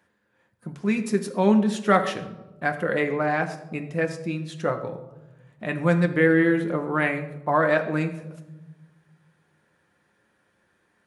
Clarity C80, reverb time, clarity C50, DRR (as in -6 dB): 13.0 dB, 1.1 s, 11.0 dB, 5.0 dB